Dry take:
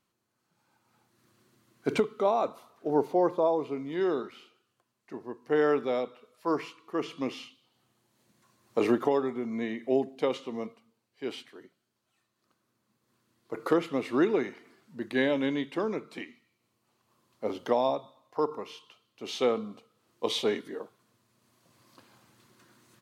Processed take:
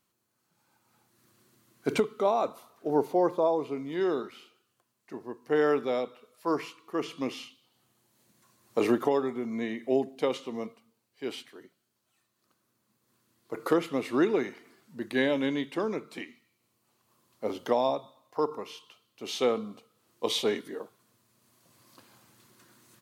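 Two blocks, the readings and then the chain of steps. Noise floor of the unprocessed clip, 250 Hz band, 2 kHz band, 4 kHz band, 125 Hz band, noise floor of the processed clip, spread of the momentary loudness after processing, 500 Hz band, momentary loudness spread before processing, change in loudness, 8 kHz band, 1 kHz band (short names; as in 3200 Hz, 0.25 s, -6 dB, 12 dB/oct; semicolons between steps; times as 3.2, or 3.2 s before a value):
-79 dBFS, 0.0 dB, +0.5 dB, +1.5 dB, 0.0 dB, -77 dBFS, 17 LU, 0.0 dB, 17 LU, 0.0 dB, n/a, 0.0 dB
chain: high shelf 7700 Hz +9 dB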